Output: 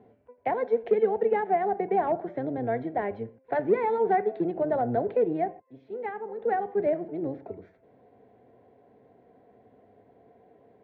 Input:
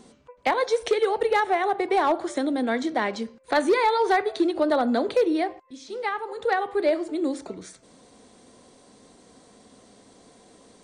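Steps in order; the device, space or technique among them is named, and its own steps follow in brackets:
sub-octave bass pedal (sub-octave generator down 1 octave, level −1 dB; loudspeaker in its box 86–2,100 Hz, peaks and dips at 150 Hz −7 dB, 430 Hz +8 dB, 700 Hz +9 dB, 1,200 Hz −10 dB)
level −8 dB

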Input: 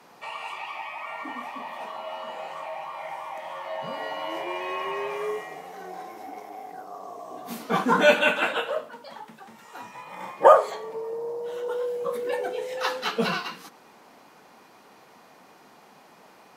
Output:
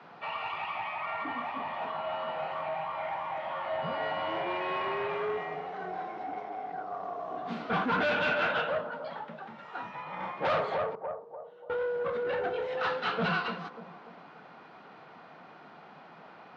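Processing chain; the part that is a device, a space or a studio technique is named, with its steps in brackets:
0:10.95–0:11.80: noise gate with hold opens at −21 dBFS
analogue delay pedal into a guitar amplifier (bucket-brigade delay 293 ms, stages 2,048, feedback 38%, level −14.5 dB; tube saturation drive 28 dB, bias 0.25; loudspeaker in its box 83–3,800 Hz, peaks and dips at 100 Hz +5 dB, 160 Hz +8 dB, 700 Hz +4 dB, 1,400 Hz +7 dB)

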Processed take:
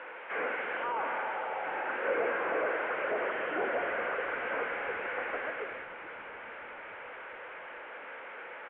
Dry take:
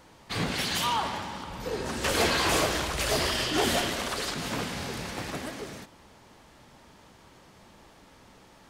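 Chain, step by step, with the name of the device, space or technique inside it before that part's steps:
healed spectral selection 0:01.17–0:01.92, 380–890 Hz before
digital answering machine (band-pass filter 380–3,400 Hz; linear delta modulator 16 kbit/s, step −42 dBFS; loudspeaker in its box 410–3,000 Hz, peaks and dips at 500 Hz +9 dB, 1,500 Hz +10 dB, 2,200 Hz +6 dB)
echo with shifted repeats 431 ms, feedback 59%, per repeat −97 Hz, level −20.5 dB

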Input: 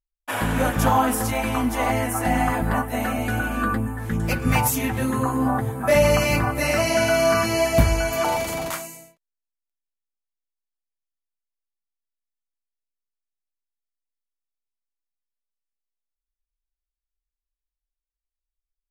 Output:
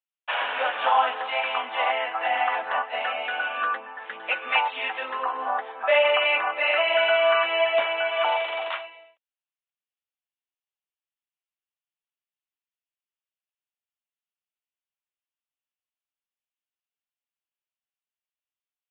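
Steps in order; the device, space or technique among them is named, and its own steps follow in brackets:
musical greeting card (downsampling to 8,000 Hz; high-pass filter 590 Hz 24 dB per octave; parametric band 2,800 Hz +7 dB 0.39 octaves)

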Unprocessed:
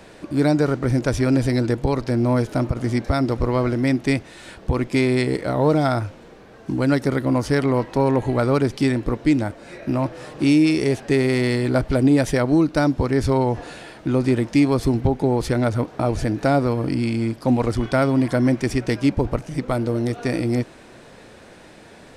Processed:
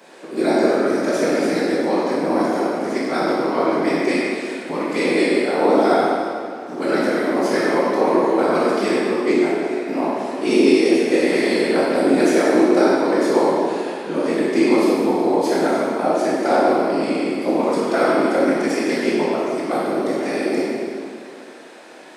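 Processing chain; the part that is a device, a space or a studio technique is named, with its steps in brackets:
whispering ghost (random phases in short frames; high-pass filter 260 Hz 24 dB per octave; convolution reverb RT60 2.2 s, pre-delay 14 ms, DRR −7 dB)
level −3 dB

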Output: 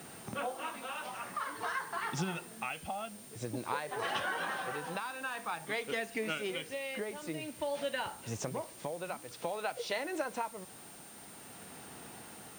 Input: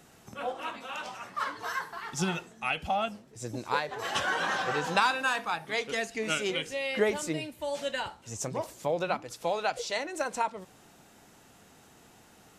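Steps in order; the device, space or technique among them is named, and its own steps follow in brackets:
medium wave at night (band-pass filter 100–3,700 Hz; downward compressor 5 to 1, threshold −40 dBFS, peak gain reduction 18 dB; amplitude tremolo 0.5 Hz, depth 44%; steady tone 9,000 Hz −61 dBFS; white noise bed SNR 17 dB)
level +7 dB

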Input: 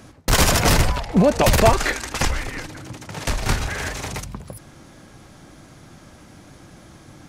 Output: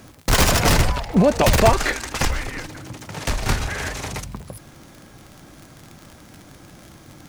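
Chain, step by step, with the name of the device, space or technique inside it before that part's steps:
record under a worn stylus (stylus tracing distortion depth 0.036 ms; surface crackle 51 per second −30 dBFS; white noise bed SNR 39 dB)

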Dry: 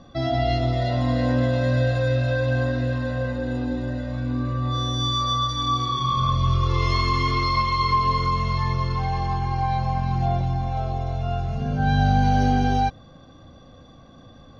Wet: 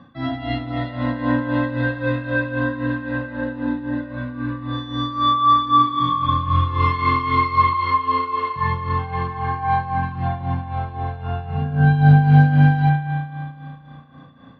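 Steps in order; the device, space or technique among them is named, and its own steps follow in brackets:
0:07.73–0:08.56: Butterworth high-pass 250 Hz 96 dB per octave
combo amplifier with spring reverb and tremolo (spring reverb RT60 2.3 s, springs 34 ms, chirp 50 ms, DRR 0.5 dB; amplitude tremolo 3.8 Hz, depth 69%; loudspeaker in its box 91–3,600 Hz, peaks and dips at 150 Hz +4 dB, 260 Hz +6 dB, 390 Hz −7 dB, 660 Hz −7 dB, 990 Hz +9 dB, 1,700 Hz +9 dB)

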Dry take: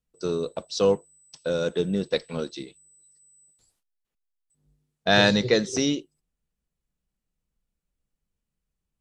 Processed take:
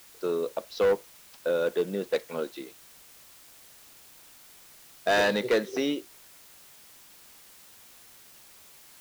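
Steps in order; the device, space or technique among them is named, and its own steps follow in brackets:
aircraft radio (band-pass filter 350–2,500 Hz; hard clipping −19.5 dBFS, distortion −10 dB; white noise bed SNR 21 dB)
level +1 dB

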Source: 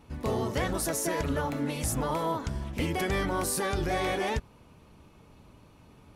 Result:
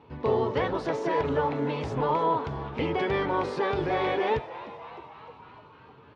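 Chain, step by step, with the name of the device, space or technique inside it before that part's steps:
frequency-shifting delay pedal into a guitar cabinet (echo with shifted repeats 304 ms, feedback 64%, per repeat +140 Hz, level −16 dB; loudspeaker in its box 99–3,900 Hz, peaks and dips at 140 Hz +4 dB, 190 Hz −6 dB, 440 Hz +9 dB, 940 Hz +8 dB)

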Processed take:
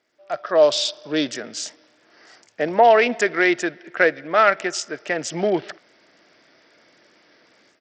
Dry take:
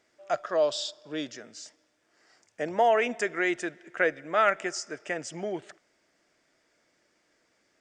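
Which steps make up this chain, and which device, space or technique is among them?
Bluetooth headset (high-pass filter 120 Hz 12 dB per octave; automatic gain control gain up to 16.5 dB; downsampling to 16,000 Hz; level −2 dB; SBC 64 kbit/s 44,100 Hz)

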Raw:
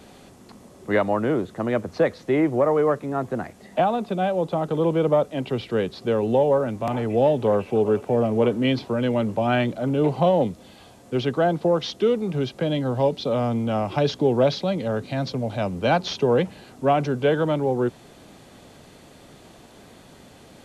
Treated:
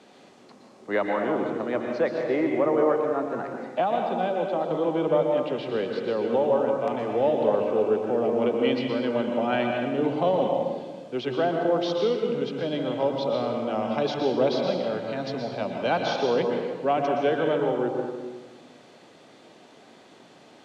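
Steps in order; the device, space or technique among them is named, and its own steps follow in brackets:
supermarket ceiling speaker (band-pass filter 250–6,000 Hz; convolution reverb RT60 1.3 s, pre-delay 112 ms, DRR 2 dB)
level −4 dB

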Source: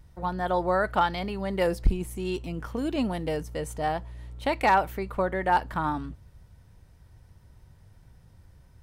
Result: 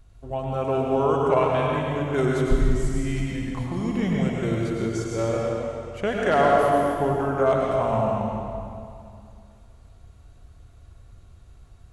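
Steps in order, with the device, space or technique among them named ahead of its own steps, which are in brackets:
slowed and reverbed (speed change −26%; convolution reverb RT60 2.4 s, pre-delay 92 ms, DRR −3 dB)

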